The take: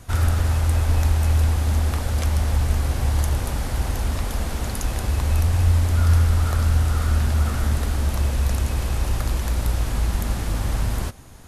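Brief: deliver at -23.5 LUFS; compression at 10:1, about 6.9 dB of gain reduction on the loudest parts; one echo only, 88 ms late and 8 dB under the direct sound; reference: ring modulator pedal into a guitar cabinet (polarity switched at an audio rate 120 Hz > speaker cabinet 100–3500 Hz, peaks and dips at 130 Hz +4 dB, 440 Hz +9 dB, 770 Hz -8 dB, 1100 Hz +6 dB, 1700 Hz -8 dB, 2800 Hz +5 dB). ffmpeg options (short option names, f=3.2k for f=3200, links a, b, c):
-af "acompressor=threshold=-20dB:ratio=10,aecho=1:1:88:0.398,aeval=exprs='val(0)*sgn(sin(2*PI*120*n/s))':c=same,highpass=100,equalizer=f=130:t=q:w=4:g=4,equalizer=f=440:t=q:w=4:g=9,equalizer=f=770:t=q:w=4:g=-8,equalizer=f=1.1k:t=q:w=4:g=6,equalizer=f=1.7k:t=q:w=4:g=-8,equalizer=f=2.8k:t=q:w=4:g=5,lowpass=f=3.5k:w=0.5412,lowpass=f=3.5k:w=1.3066,volume=0.5dB"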